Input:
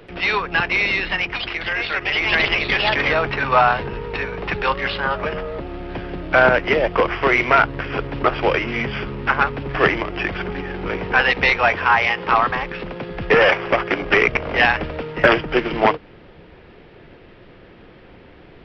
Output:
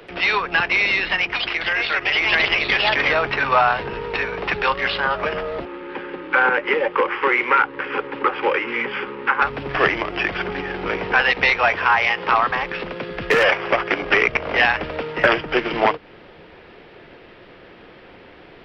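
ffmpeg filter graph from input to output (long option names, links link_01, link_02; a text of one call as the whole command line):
ffmpeg -i in.wav -filter_complex "[0:a]asettb=1/sr,asplit=3[link_01][link_02][link_03];[link_01]atrim=end=5.654[link_04];[link_02]atrim=start=5.65:end=9.42,asetpts=PTS-STARTPTS,afade=type=in:duration=0.004:curve=qsin,afade=type=out:start_time=3.766:duration=0.004:curve=qsin,asuperstop=centerf=670:order=20:qfactor=4.1,acrossover=split=220 3000:gain=0.1 1 0.178[link_05][link_06][link_07];[link_05][link_06][link_07]amix=inputs=3:normalize=0[link_08];[link_03]atrim=start=9.416[link_09];[link_04][link_08]acrossfade=duration=0.004:curve1=hsin:curve2=qsin[link_10];[link_10][link_09]acrossfade=duration=0.004:curve1=qsin:curve2=hsin,asettb=1/sr,asplit=3[link_11][link_12][link_13];[link_11]atrim=end=12.894[link_14];[link_12]atrim=start=12.89:end=13.44,asetpts=PTS-STARTPTS,afade=type=in:duration=0.004:curve=qsin,afade=type=out:start_time=0.546:duration=0.004:curve=qsin,equalizer=frequency=810:width_type=o:width=0.39:gain=-6.5,asoftclip=type=hard:threshold=-9dB[link_15];[link_13]atrim=start=13.436[link_16];[link_14][link_15]acrossfade=duration=0.004:curve1=hsin:curve2=qsin[link_17];[link_17][link_16]acrossfade=duration=0.004:curve1=qsin:curve2=hsin,lowshelf=frequency=230:gain=-11.5,acrossover=split=140[link_18][link_19];[link_19]acompressor=threshold=-24dB:ratio=1.5[link_20];[link_18][link_20]amix=inputs=2:normalize=0,volume=4dB" out.wav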